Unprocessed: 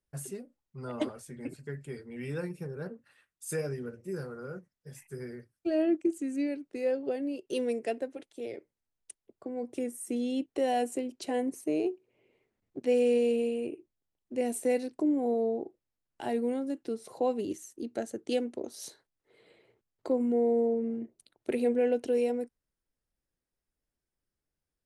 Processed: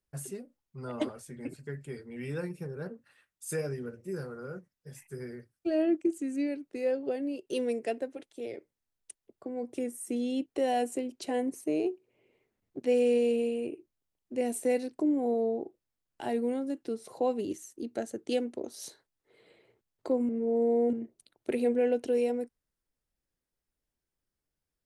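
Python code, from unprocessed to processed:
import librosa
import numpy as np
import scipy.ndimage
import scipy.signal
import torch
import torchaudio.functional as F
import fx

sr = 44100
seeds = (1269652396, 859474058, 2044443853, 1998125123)

y = fx.edit(x, sr, fx.reverse_span(start_s=20.29, length_s=0.64), tone=tone)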